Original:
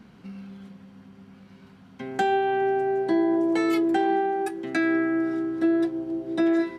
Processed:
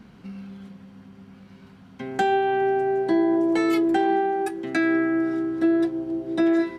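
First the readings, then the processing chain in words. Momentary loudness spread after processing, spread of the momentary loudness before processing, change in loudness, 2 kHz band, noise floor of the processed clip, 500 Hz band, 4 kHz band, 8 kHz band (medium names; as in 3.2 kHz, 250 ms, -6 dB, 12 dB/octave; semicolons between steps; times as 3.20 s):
18 LU, 17 LU, +1.5 dB, +1.5 dB, -49 dBFS, +1.5 dB, +1.5 dB, no reading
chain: bass shelf 63 Hz +6.5 dB; trim +1.5 dB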